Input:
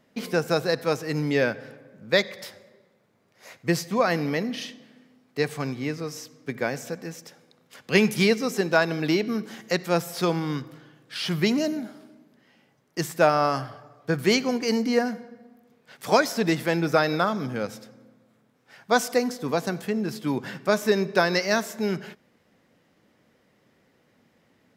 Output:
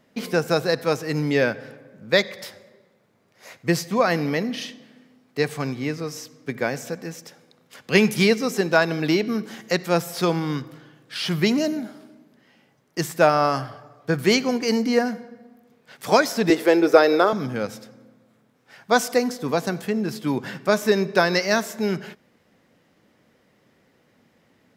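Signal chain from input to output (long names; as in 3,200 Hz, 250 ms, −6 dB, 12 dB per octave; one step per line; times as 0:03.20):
0:16.50–0:17.33: high-pass with resonance 390 Hz, resonance Q 3.6
level +2.5 dB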